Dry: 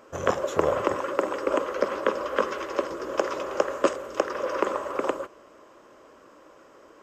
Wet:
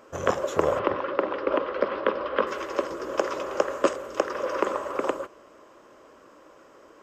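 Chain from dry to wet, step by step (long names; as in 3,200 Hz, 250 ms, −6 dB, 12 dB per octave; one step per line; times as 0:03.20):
0:00.79–0:02.47: Butterworth low-pass 4,400 Hz 36 dB per octave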